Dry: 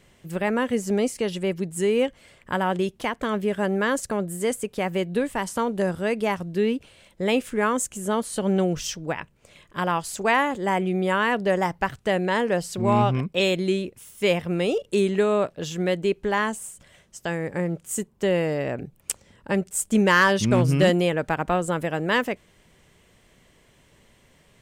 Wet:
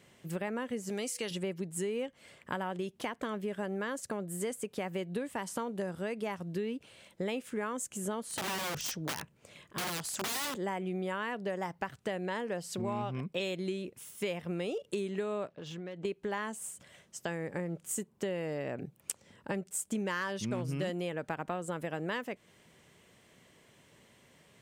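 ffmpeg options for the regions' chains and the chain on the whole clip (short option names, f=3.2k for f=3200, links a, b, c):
-filter_complex "[0:a]asettb=1/sr,asplit=3[a][b][c];[a]atrim=end=0.894[d];[b]atrim=start=0.89:end=1.31,asetpts=PTS-STARTPTS,afade=t=in:d=0.004:c=qsin,afade=t=out:st=0.416:d=0.004:c=qsin,tiltshelf=f=1.4k:g=-6.5,aeval=exprs='val(0)+0.002*sin(2*PI*490*n/s)':c=same[e];[c]atrim=start=1.306[f];[d][e]acrossfade=d=0.004:c1=hsin:c2=qsin[g];[g][f]acrossfade=d=0.004:c1=qsin:c2=hsin,asettb=1/sr,asplit=3[h][i][j];[h]atrim=end=8.234[k];[i]atrim=start=8.23:end=10.55,asetpts=PTS-STARTPTS,afade=t=in:d=0.004:c=qsin,afade=t=out:st=2.316:d=0.004:c=qsin,lowshelf=f=280:g=3,aeval=exprs='(mod(14.1*val(0)+1,2)-1)/14.1':c=same[l];[j]atrim=start=10.546[m];[k][l]acrossfade=d=0.004:c1=hsin:c2=qsin[n];[n][m]acrossfade=d=0.004:c1=qsin:c2=hsin,asettb=1/sr,asplit=3[o][p][q];[o]atrim=end=15.484[r];[p]atrim=start=15.48:end=16.05,asetpts=PTS-STARTPTS,afade=t=in:d=0.004:c=qsin,afade=t=out:st=0.566:d=0.004:c=qsin,lowpass=4.1k,acompressor=threshold=-35dB:ratio=8:attack=3.2:release=140:knee=1:detection=peak,aeval=exprs='clip(val(0),-1,0.0141)':c=same[s];[q]atrim=start=16.046[t];[r][s]acrossfade=d=0.004:c1=hsin:c2=qsin[u];[u][t]acrossfade=d=0.004:c1=qsin:c2=hsin,highpass=110,acompressor=threshold=-30dB:ratio=5,volume=-3dB"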